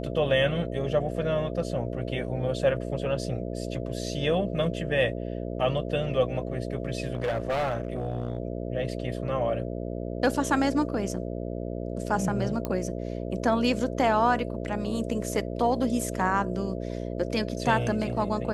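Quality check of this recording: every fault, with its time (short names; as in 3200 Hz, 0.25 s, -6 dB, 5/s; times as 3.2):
buzz 60 Hz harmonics 11 -33 dBFS
7.13–8.38 clipped -23.5 dBFS
12.65 pop -16 dBFS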